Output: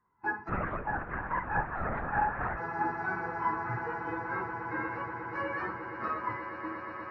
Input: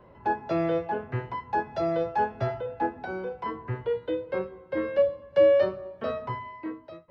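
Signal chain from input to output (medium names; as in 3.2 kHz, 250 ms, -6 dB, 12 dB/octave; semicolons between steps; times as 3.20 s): phase randomisation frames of 100 ms; gate -39 dBFS, range -19 dB; peaking EQ 1.2 kHz +11.5 dB 2.7 oct; static phaser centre 1.4 kHz, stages 4; echo with a slow build-up 120 ms, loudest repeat 8, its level -13.5 dB; 0.49–2.58 s: LPC vocoder at 8 kHz whisper; trim -7 dB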